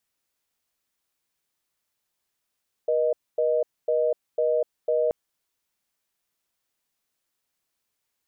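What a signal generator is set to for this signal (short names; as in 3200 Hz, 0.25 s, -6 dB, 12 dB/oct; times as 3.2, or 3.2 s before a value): call progress tone reorder tone, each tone -22.5 dBFS 2.23 s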